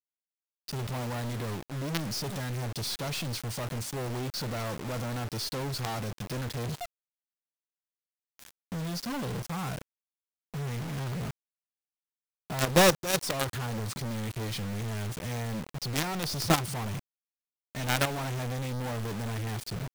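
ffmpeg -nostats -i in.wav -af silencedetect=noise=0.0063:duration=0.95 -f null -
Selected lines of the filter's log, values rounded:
silence_start: 6.86
silence_end: 8.39 | silence_duration: 1.54
silence_start: 11.31
silence_end: 12.50 | silence_duration: 1.19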